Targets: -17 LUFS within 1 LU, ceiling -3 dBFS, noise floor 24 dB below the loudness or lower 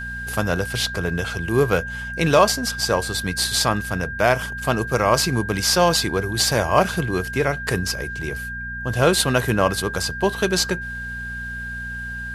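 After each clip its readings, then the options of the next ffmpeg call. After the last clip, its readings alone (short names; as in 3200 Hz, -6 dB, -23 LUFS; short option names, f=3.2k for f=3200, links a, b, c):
hum 60 Hz; harmonics up to 240 Hz; hum level -33 dBFS; steady tone 1600 Hz; tone level -29 dBFS; loudness -21.0 LUFS; peak -2.0 dBFS; loudness target -17.0 LUFS
-> -af "bandreject=f=60:t=h:w=4,bandreject=f=120:t=h:w=4,bandreject=f=180:t=h:w=4,bandreject=f=240:t=h:w=4"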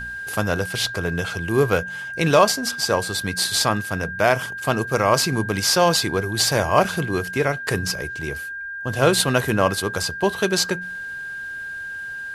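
hum none; steady tone 1600 Hz; tone level -29 dBFS
-> -af "bandreject=f=1.6k:w=30"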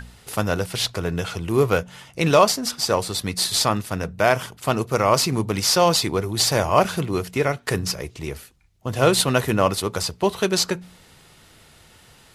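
steady tone none; loudness -21.5 LUFS; peak -2.5 dBFS; loudness target -17.0 LUFS
-> -af "volume=4.5dB,alimiter=limit=-3dB:level=0:latency=1"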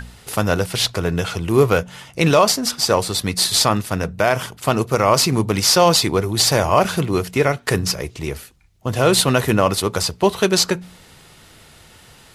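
loudness -17.5 LUFS; peak -3.0 dBFS; noise floor -47 dBFS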